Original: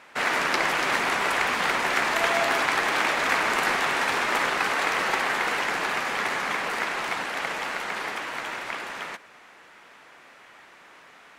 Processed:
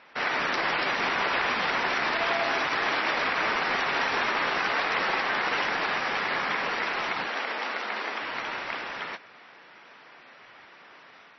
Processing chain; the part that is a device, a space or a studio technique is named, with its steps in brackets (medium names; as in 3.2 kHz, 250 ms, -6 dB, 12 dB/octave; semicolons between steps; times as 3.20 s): 7.28–8.21 s: elliptic high-pass 210 Hz, stop band 60 dB; low-bitrate web radio (level rider gain up to 3 dB; peak limiter -13.5 dBFS, peak gain reduction 8.5 dB; trim -3 dB; MP3 24 kbps 22.05 kHz)